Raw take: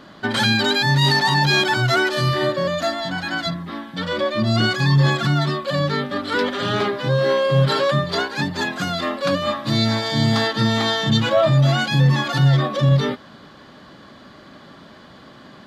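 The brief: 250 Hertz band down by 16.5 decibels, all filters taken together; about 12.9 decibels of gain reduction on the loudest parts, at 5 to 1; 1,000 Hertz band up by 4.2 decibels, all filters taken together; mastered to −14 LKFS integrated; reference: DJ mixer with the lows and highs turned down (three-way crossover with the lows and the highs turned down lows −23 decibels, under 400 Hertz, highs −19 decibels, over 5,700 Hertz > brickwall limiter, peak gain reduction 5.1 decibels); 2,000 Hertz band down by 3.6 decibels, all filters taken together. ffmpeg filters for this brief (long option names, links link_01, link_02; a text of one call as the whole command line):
ffmpeg -i in.wav -filter_complex "[0:a]equalizer=frequency=250:width_type=o:gain=-4,equalizer=frequency=1000:width_type=o:gain=8,equalizer=frequency=2000:width_type=o:gain=-8.5,acompressor=threshold=-27dB:ratio=5,acrossover=split=400 5700:gain=0.0708 1 0.112[link_01][link_02][link_03];[link_01][link_02][link_03]amix=inputs=3:normalize=0,volume=18.5dB,alimiter=limit=-5dB:level=0:latency=1" out.wav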